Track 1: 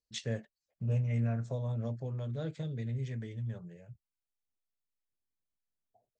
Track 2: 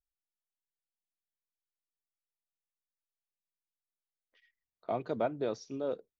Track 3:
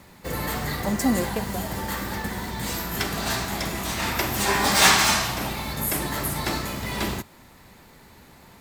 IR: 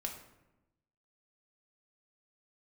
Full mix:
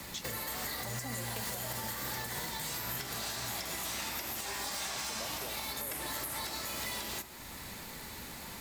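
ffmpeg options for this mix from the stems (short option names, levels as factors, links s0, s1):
-filter_complex "[0:a]volume=0.501[s0];[1:a]volume=0.891[s1];[2:a]acrossover=split=100|390|920|3500[s2][s3][s4][s5][s6];[s2]acompressor=threshold=0.00398:ratio=4[s7];[s3]acompressor=threshold=0.00562:ratio=4[s8];[s4]acompressor=threshold=0.0126:ratio=4[s9];[s5]acompressor=threshold=0.0112:ratio=4[s10];[s6]acompressor=threshold=0.0126:ratio=4[s11];[s7][s8][s9][s10][s11]amix=inputs=5:normalize=0,volume=0.891,asplit=2[s12][s13];[s13]volume=0.473[s14];[s1][s12]amix=inputs=2:normalize=0,acompressor=threshold=0.0141:ratio=6,volume=1[s15];[3:a]atrim=start_sample=2205[s16];[s14][s16]afir=irnorm=-1:irlink=0[s17];[s0][s15][s17]amix=inputs=3:normalize=0,highshelf=f=2300:g=9.5,alimiter=level_in=1.5:limit=0.0631:level=0:latency=1:release=341,volume=0.668"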